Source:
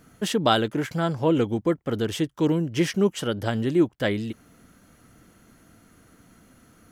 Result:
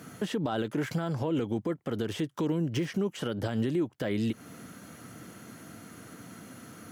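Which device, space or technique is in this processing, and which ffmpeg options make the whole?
podcast mastering chain: -af "highpass=frequency=100:width=0.5412,highpass=frequency=100:width=1.3066,deesser=1,acompressor=threshold=-36dB:ratio=2,alimiter=level_in=5dB:limit=-24dB:level=0:latency=1:release=107,volume=-5dB,volume=8.5dB" -ar 48000 -c:a libmp3lame -b:a 112k

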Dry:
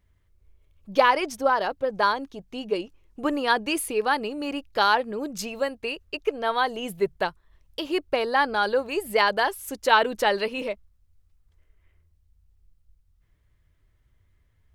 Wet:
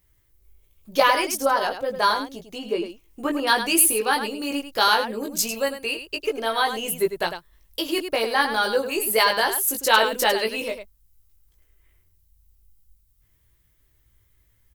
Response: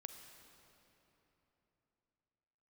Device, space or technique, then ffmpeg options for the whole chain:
slapback doubling: -filter_complex "[0:a]asplit=3[link_01][link_02][link_03];[link_02]adelay=18,volume=-3.5dB[link_04];[link_03]adelay=102,volume=-8.5dB[link_05];[link_01][link_04][link_05]amix=inputs=3:normalize=0,aemphasis=mode=production:type=75fm,asettb=1/sr,asplit=3[link_06][link_07][link_08];[link_06]atrim=end=2.584[link_09];[link_07]atrim=start=2.58:end=3.47,asetpts=PTS-STARTPTS,afade=type=in:duration=0.004:curve=qsin,afade=type=out:start_time=0.886:duration=0.004:curve=qsin,acrossover=split=2900[link_10][link_11];[link_11]acompressor=threshold=-45dB:ratio=4:attack=1:release=60[link_12];[link_10][link_12]amix=inputs=2:normalize=0[link_13];[link_08]atrim=start=3.466[link_14];[link_09][link_13]acrossfade=duration=0.004:curve1=hsin:curve2=qsin[link_15];[link_15][link_14]acrossfade=duration=0.004:curve1=qsin:curve2=hsin,equalizer=frequency=340:width=5:gain=3.5,volume=-1dB"

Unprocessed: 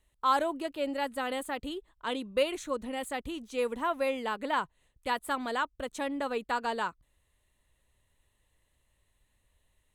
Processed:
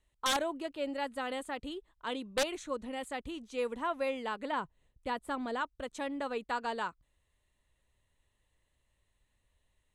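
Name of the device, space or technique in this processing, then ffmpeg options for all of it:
overflowing digital effects unit: -filter_complex "[0:a]asettb=1/sr,asplit=3[link_01][link_02][link_03];[link_01]atrim=end=4.524[link_04];[link_02]atrim=start=4.52:end=5.61,asetpts=PTS-STARTPTS,afade=type=in:duration=0.004:curve=qsin,afade=type=out:start_time=1.086:duration=0.004:curve=qsin,tiltshelf=frequency=680:gain=4.5[link_05];[link_03]atrim=start=5.606[link_06];[link_04][link_05]acrossfade=duration=0.004:curve1=hsin:curve2=qsin[link_07];[link_07][link_06]acrossfade=duration=0.004:curve1=qsin:curve2=hsin,aeval=exprs='(mod(8.41*val(0)+1,2)-1)/8.41':channel_layout=same,lowpass=9000,volume=-3.5dB"

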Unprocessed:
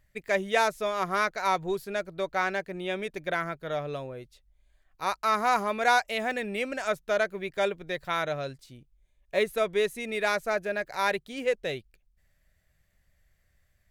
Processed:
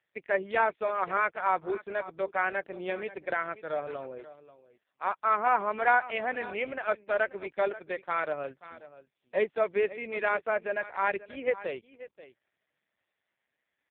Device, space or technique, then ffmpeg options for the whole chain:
satellite phone: -filter_complex "[0:a]asplit=3[link_01][link_02][link_03];[link_01]afade=type=out:start_time=2.81:duration=0.02[link_04];[link_02]equalizer=frequency=95:width_type=o:width=2.2:gain=2.5,afade=type=in:start_time=2.81:duration=0.02,afade=type=out:start_time=3.28:duration=0.02[link_05];[link_03]afade=type=in:start_time=3.28:duration=0.02[link_06];[link_04][link_05][link_06]amix=inputs=3:normalize=0,highpass=300,lowpass=3300,aecho=1:1:535:0.15" -ar 8000 -c:a libopencore_amrnb -b:a 4750

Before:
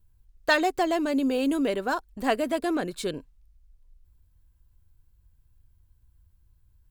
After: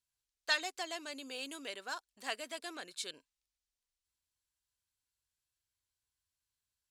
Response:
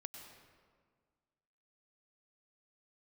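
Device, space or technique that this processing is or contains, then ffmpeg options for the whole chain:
piezo pickup straight into a mixer: -af "lowpass=6100,aderivative,volume=2.5dB"

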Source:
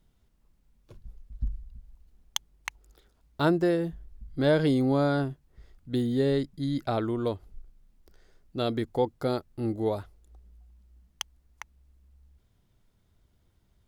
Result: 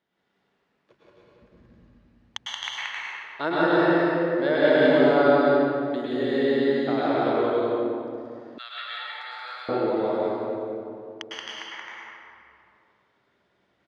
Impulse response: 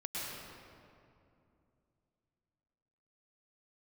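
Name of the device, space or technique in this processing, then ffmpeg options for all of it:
station announcement: -filter_complex "[0:a]highpass=370,lowpass=3600,equalizer=frequency=1800:width_type=o:width=0.42:gain=6,aecho=1:1:177.8|265.3:0.891|0.631[link_01];[1:a]atrim=start_sample=2205[link_02];[link_01][link_02]afir=irnorm=-1:irlink=0,asettb=1/sr,asplit=3[link_03][link_04][link_05];[link_03]atrim=end=8.584[link_06];[link_04]atrim=start=8.58:end=9.69,asetpts=PTS-STARTPTS,afade=type=in:duration=0.004:curve=qsin,afade=type=out:start_time=1.106:duration=0.004:curve=qsin,highpass=frequency=1300:width=0.5412,highpass=frequency=1300:width=1.3066[link_07];[link_05]atrim=start=9.686[link_08];[link_06][link_07]acrossfade=duration=0.004:curve1=hsin:curve2=qsin[link_09];[link_09][link_08]acrossfade=duration=0.004:curve1=qsin:curve2=hsin,volume=3dB"

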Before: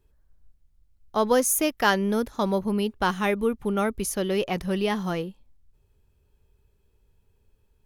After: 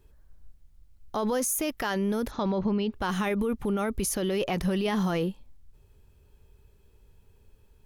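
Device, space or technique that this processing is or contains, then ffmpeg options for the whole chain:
stacked limiters: -filter_complex "[0:a]asettb=1/sr,asplit=3[link_01][link_02][link_03];[link_01]atrim=end=2.314[link_04];[link_02]atrim=start=2.31:end=2.93,asetpts=PTS-STARTPTS,afade=type=in:duration=0.004:curve=qsin,afade=type=out:start_time=0.616:duration=0.004:curve=qsin,lowpass=frequency=5100:width=0.5412,lowpass=frequency=5100:width=1.3066[link_05];[link_03]atrim=start=2.926[link_06];[link_04][link_05]acrossfade=duration=0.004:curve1=hsin:curve2=qsin[link_07];[link_07][link_06]acrossfade=duration=0.004:curve1=qsin:curve2=hsin,alimiter=limit=-15dB:level=0:latency=1:release=154,alimiter=limit=-21dB:level=0:latency=1:release=51,alimiter=level_in=2.5dB:limit=-24dB:level=0:latency=1:release=21,volume=-2.5dB,volume=6.5dB"

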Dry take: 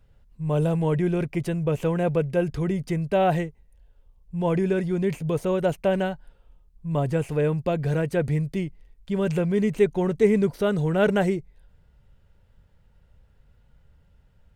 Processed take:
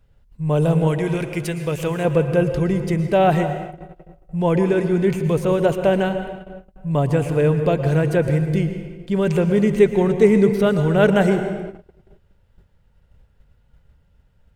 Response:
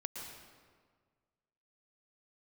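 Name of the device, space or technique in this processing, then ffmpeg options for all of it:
keyed gated reverb: -filter_complex "[0:a]asettb=1/sr,asplit=3[link_01][link_02][link_03];[link_01]atrim=end=0.874[link_04];[link_02]atrim=start=0.87:end=2.05,asetpts=PTS-STARTPTS,afade=type=in:duration=0.004:curve=qsin,afade=type=out:start_time=1.176:duration=0.004:curve=qsin,tiltshelf=frequency=1500:gain=-5.5[link_05];[link_03]atrim=start=2.046[link_06];[link_04][link_05]acrossfade=duration=0.004:curve1=hsin:curve2=qsin[link_07];[link_07][link_06]acrossfade=duration=0.004:curve1=qsin:curve2=hsin,asplit=3[link_08][link_09][link_10];[1:a]atrim=start_sample=2205[link_11];[link_09][link_11]afir=irnorm=-1:irlink=0[link_12];[link_10]apad=whole_len=641715[link_13];[link_12][link_13]sidechaingate=range=-33dB:threshold=-52dB:ratio=16:detection=peak,volume=1.5dB[link_14];[link_08][link_14]amix=inputs=2:normalize=0"

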